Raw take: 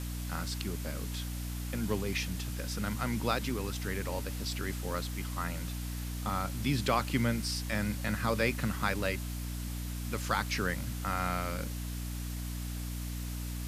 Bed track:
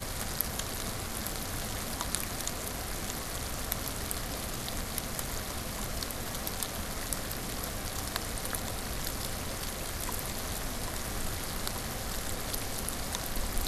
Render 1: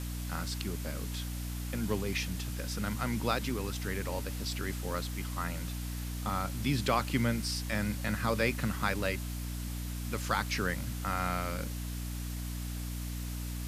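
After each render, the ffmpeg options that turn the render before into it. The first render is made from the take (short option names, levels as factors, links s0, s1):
-af anull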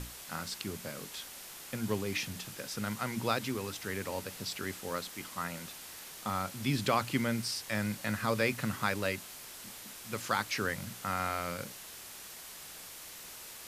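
-af "bandreject=f=60:t=h:w=6,bandreject=f=120:t=h:w=6,bandreject=f=180:t=h:w=6,bandreject=f=240:t=h:w=6,bandreject=f=300:t=h:w=6"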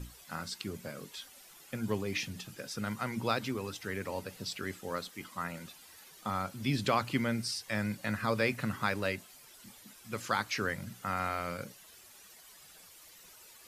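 -af "afftdn=nr=12:nf=-48"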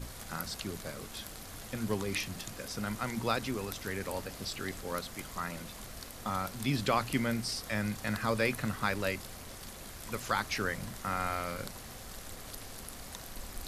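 -filter_complex "[1:a]volume=0.299[s0];[0:a][s0]amix=inputs=2:normalize=0"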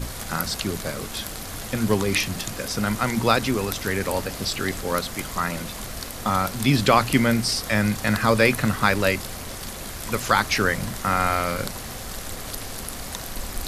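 -af "volume=3.98"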